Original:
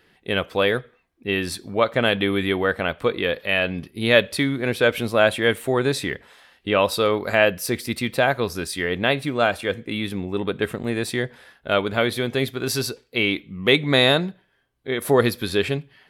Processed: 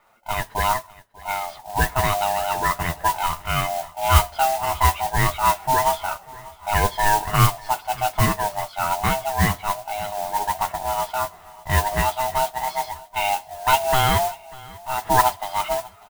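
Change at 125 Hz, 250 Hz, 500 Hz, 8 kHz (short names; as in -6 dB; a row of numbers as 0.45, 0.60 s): +3.5, -9.0, -6.5, +6.0 dB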